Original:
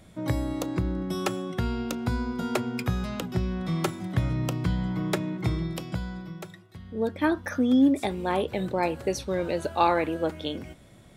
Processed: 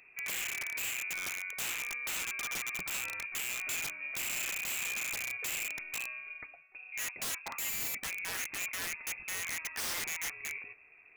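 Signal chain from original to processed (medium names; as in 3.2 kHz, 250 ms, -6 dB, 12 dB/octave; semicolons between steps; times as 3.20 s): frequency inversion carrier 2.6 kHz; integer overflow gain 24 dB; trim -7 dB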